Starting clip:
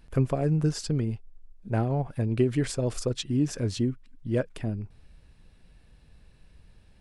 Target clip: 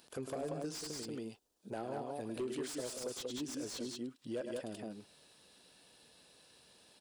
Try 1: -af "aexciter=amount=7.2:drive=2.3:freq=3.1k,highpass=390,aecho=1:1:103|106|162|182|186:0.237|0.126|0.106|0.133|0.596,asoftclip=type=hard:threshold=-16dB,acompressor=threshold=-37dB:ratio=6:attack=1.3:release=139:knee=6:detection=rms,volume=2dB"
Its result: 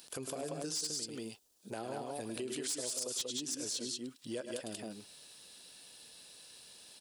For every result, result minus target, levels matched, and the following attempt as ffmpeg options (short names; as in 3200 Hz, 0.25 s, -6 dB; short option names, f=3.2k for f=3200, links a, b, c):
hard clip: distortion -8 dB; 4000 Hz band +4.0 dB
-af "aexciter=amount=7.2:drive=2.3:freq=3.1k,highpass=390,aecho=1:1:103|106|162|182|186:0.237|0.126|0.106|0.133|0.596,asoftclip=type=hard:threshold=-24dB,acompressor=threshold=-37dB:ratio=6:attack=1.3:release=139:knee=6:detection=rms,volume=2dB"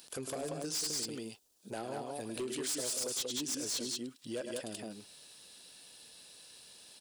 4000 Hz band +4.0 dB
-af "aexciter=amount=7.2:drive=2.3:freq=3.1k,highpass=390,aecho=1:1:103|106|162|182|186:0.237|0.126|0.106|0.133|0.596,asoftclip=type=hard:threshold=-24dB,acompressor=threshold=-37dB:ratio=6:attack=1.3:release=139:knee=6:detection=rms,highshelf=f=2.6k:g=-12,volume=2dB"